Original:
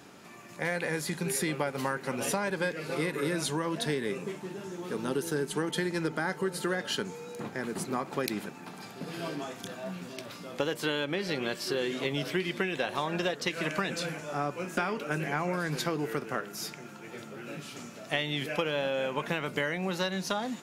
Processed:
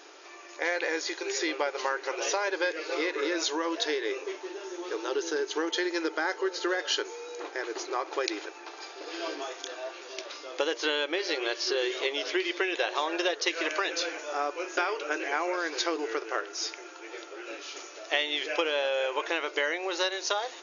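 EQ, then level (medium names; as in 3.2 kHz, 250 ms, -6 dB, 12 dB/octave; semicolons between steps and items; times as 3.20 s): brick-wall FIR band-pass 300–6900 Hz; treble shelf 4.2 kHz +7 dB; +2.0 dB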